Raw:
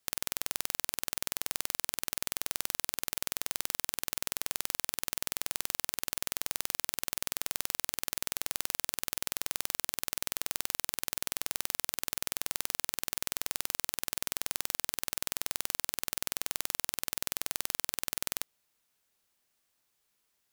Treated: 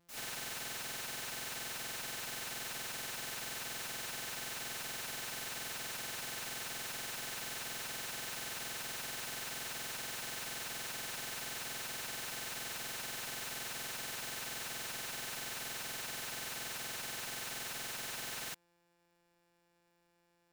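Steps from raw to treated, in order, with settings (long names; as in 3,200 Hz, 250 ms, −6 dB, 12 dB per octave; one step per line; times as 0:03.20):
samples sorted by size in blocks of 256 samples
reverb whose tail is shaped and stops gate 130 ms rising, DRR 5 dB
slew-rate limiting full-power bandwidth 47 Hz
level +3 dB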